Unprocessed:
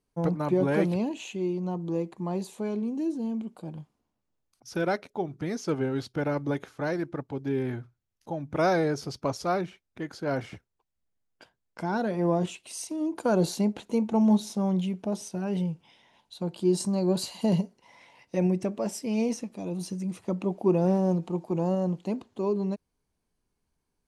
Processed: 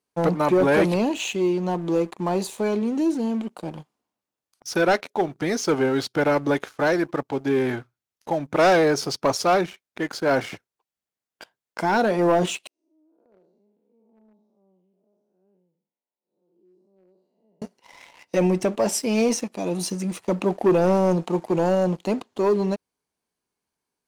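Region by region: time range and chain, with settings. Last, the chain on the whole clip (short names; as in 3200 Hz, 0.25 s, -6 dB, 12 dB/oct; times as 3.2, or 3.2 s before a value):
12.67–17.62 time blur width 0.211 s + Butterworth band-pass 270 Hz, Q 0.86 + differentiator
whole clip: HPF 460 Hz 6 dB/oct; sample leveller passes 2; gain +5 dB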